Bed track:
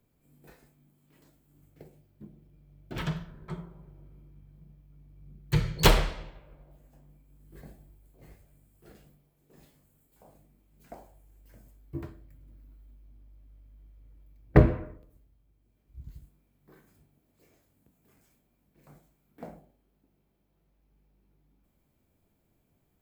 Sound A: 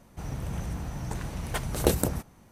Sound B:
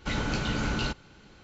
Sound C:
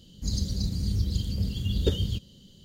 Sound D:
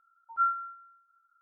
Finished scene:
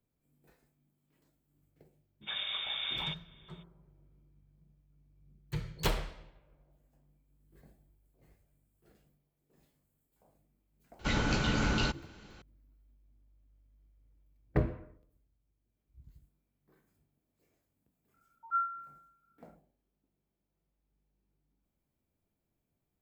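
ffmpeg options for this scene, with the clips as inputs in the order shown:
-filter_complex "[2:a]asplit=2[s0][s1];[0:a]volume=0.266[s2];[s0]lowpass=f=3100:t=q:w=0.5098,lowpass=f=3100:t=q:w=0.6013,lowpass=f=3100:t=q:w=0.9,lowpass=f=3100:t=q:w=2.563,afreqshift=-3700,atrim=end=1.43,asetpts=PTS-STARTPTS,volume=0.398,afade=t=in:d=0.02,afade=t=out:st=1.41:d=0.02,adelay=2210[s3];[s1]atrim=end=1.43,asetpts=PTS-STARTPTS,volume=0.944,afade=t=in:d=0.004:c=hsin,afade=t=out:st=1.426:d=0.004:c=hsin,adelay=10990[s4];[4:a]atrim=end=1.41,asetpts=PTS-STARTPTS,volume=0.562,afade=t=in:d=0.004:c=hsin,afade=t=out:st=1.406:d=0.004:c=hsin,adelay=18140[s5];[s2][s3][s4][s5]amix=inputs=4:normalize=0"

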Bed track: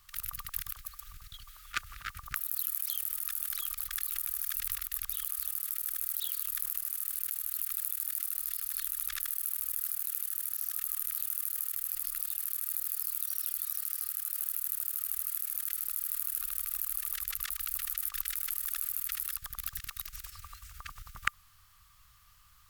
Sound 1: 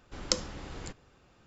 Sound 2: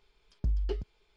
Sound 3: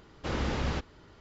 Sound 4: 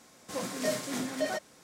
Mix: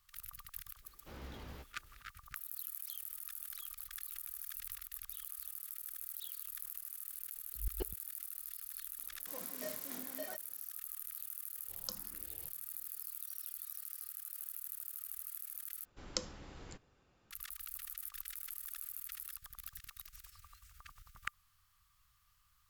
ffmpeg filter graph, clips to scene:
-filter_complex "[1:a]asplit=2[s0][s1];[0:a]volume=0.282[s2];[3:a]flanger=delay=15:depth=4.2:speed=2.4[s3];[2:a]aeval=exprs='val(0)*pow(10,-35*if(lt(mod(-7*n/s,1),2*abs(-7)/1000),1-mod(-7*n/s,1)/(2*abs(-7)/1000),(mod(-7*n/s,1)-2*abs(-7)/1000)/(1-2*abs(-7)/1000))/20)':c=same[s4];[4:a]lowshelf=f=140:g=-9[s5];[s0]asplit=2[s6][s7];[s7]afreqshift=1.4[s8];[s6][s8]amix=inputs=2:normalize=1[s9];[s2]asplit=2[s10][s11];[s10]atrim=end=15.854[s12];[s1]atrim=end=1.46,asetpts=PTS-STARTPTS,volume=0.335[s13];[s11]atrim=start=17.306[s14];[s3]atrim=end=1.2,asetpts=PTS-STARTPTS,volume=0.158,afade=t=in:d=0.004:c=hsin,afade=t=out:st=1.196:d=0.004:c=hsin,adelay=820[s15];[s4]atrim=end=1.16,asetpts=PTS-STARTPTS,volume=0.794,afade=t=in:d=0.004:c=hsin,afade=t=out:st=1.156:d=0.004:c=hsin,adelay=7110[s16];[s5]atrim=end=1.63,asetpts=PTS-STARTPTS,volume=0.2,afade=t=in:d=0.004:c=hsin,afade=t=out:st=1.626:d=0.004:c=hsin,adelay=396018S[s17];[s9]atrim=end=1.46,asetpts=PTS-STARTPTS,volume=0.188,afade=t=in:d=0.004:c=hsin,afade=t=out:st=1.456:d=0.004:c=hsin,adelay=11570[s18];[s12][s13]acrossfade=d=0.004:c1=hsin:c2=hsin[s19];[s19][s14]acrossfade=d=0.004:c1=hsin:c2=hsin[s20];[s20][s15][s16][s17][s18]amix=inputs=5:normalize=0"

